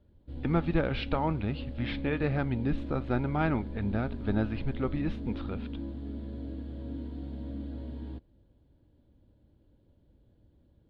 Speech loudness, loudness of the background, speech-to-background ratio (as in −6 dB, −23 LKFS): −32.0 LKFS, −40.0 LKFS, 8.0 dB